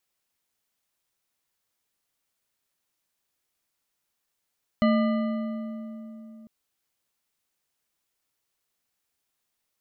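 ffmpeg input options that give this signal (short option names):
-f lavfi -i "aevalsrc='0.126*pow(10,-3*t/3.72)*sin(2*PI*223*t)+0.0708*pow(10,-3*t/2.744)*sin(2*PI*614.8*t)+0.0398*pow(10,-3*t/2.242)*sin(2*PI*1205.1*t)+0.0224*pow(10,-3*t/1.929)*sin(2*PI*1992.1*t)+0.0126*pow(10,-3*t/1.71)*sin(2*PI*2974.8*t)+0.00708*pow(10,-3*t/1.547)*sin(2*PI*4156.7*t)':d=1.65:s=44100"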